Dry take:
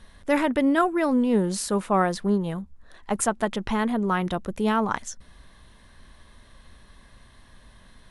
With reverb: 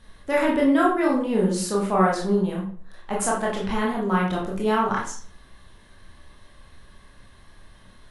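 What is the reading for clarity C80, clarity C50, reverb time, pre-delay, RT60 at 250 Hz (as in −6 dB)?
9.5 dB, 4.5 dB, 0.50 s, 19 ms, 0.50 s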